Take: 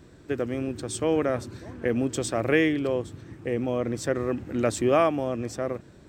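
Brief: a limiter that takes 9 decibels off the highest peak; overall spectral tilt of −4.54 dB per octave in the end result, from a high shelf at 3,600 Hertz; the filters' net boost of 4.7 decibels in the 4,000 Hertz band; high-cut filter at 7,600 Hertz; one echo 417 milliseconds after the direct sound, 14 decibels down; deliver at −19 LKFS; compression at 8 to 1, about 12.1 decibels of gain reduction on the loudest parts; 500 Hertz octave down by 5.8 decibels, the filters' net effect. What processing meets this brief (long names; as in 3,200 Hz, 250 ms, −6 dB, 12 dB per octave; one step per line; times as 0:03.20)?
low-pass filter 7,600 Hz
parametric band 500 Hz −7.5 dB
high-shelf EQ 3,600 Hz +4 dB
parametric band 4,000 Hz +4 dB
downward compressor 8 to 1, threshold −31 dBFS
brickwall limiter −26.5 dBFS
single-tap delay 417 ms −14 dB
level +19 dB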